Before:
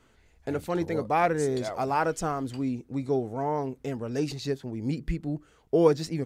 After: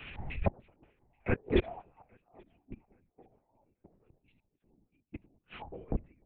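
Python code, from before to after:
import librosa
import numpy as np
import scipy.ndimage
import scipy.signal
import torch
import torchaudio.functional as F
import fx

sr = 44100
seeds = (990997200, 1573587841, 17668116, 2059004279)

y = fx.low_shelf(x, sr, hz=92.0, db=10.5)
y = fx.over_compress(y, sr, threshold_db=-32.0, ratio=-0.5)
y = fx.filter_lfo_lowpass(y, sr, shape='square', hz=3.3, low_hz=810.0, high_hz=2500.0, q=5.8)
y = fx.gate_flip(y, sr, shuts_db=-28.0, range_db=-34)
y = fx.lpc_vocoder(y, sr, seeds[0], excitation='whisper', order=8)
y = fx.echo_feedback(y, sr, ms=831, feedback_pct=38, wet_db=-18.0)
y = fx.band_widen(y, sr, depth_pct=100)
y = F.gain(torch.from_numpy(y), 5.5).numpy()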